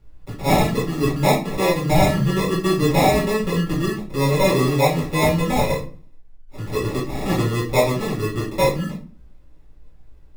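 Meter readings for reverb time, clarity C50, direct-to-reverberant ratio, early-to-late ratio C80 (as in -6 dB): 0.40 s, 6.5 dB, -7.5 dB, 12.5 dB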